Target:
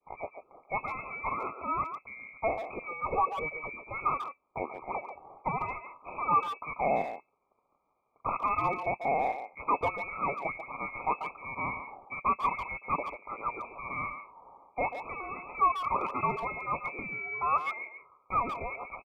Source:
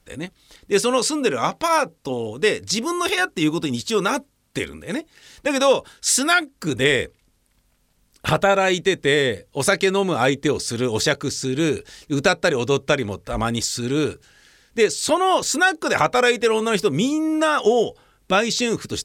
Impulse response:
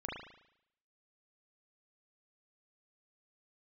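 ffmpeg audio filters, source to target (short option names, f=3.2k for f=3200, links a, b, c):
-filter_complex "[0:a]highpass=840,adynamicequalizer=threshold=0.02:dfrequency=1300:dqfactor=0.95:tfrequency=1300:tqfactor=0.95:attack=5:release=100:ratio=0.375:range=3:mode=cutabove:tftype=bell,aresample=16000,asoftclip=type=tanh:threshold=-21.5dB,aresample=44100,lowpass=f=2.2k:t=q:w=0.5098,lowpass=f=2.2k:t=q:w=0.6013,lowpass=f=2.2k:t=q:w=0.9,lowpass=f=2.2k:t=q:w=2.563,afreqshift=-2600,asuperstop=centerf=1700:order=12:qfactor=1.7,asplit=2[a][b];[b]adelay=140,highpass=300,lowpass=3.4k,asoftclip=type=hard:threshold=-27dB,volume=-8dB[c];[a][c]amix=inputs=2:normalize=0,volume=3dB"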